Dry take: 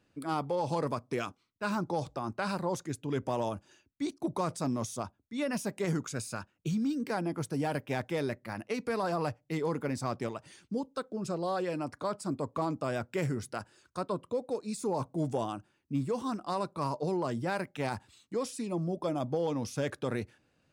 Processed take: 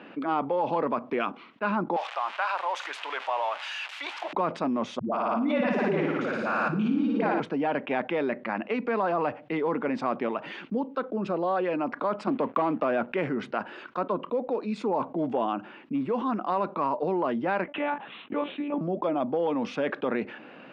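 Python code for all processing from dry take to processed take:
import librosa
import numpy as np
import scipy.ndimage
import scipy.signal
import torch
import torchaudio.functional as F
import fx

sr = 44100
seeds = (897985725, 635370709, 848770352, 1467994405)

y = fx.chain(x, sr, fx.crossing_spikes(level_db=-30.5),
    fx.highpass(hz=700.0, slope=24),
    fx.high_shelf(hz=6500.0, db=7.0), at=(1.96, 4.33))
y = fx.chain(y, sr, fx.dispersion(late='highs', ms=138.0, hz=330.0),
    fx.room_flutter(wall_m=9.7, rt60_s=1.1),
    fx.pre_swell(db_per_s=23.0), at=(4.99, 7.4))
y = fx.chain(y, sr, fx.backlash(play_db=-59.0),
    fx.leveller(passes=1),
    fx.band_squash(depth_pct=100), at=(12.27, 13.07))
y = fx.chain(y, sr, fx.lpc_monotone(seeds[0], pitch_hz=290.0, order=10),
    fx.highpass(hz=49.0, slope=12), at=(17.64, 18.81))
y = scipy.signal.sosfilt(scipy.signal.cheby1(3, 1.0, [210.0, 2900.0], 'bandpass', fs=sr, output='sos'), y)
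y = fx.peak_eq(y, sr, hz=1000.0, db=3.0, octaves=1.8)
y = fx.env_flatten(y, sr, amount_pct=50)
y = y * 10.0 ** (2.0 / 20.0)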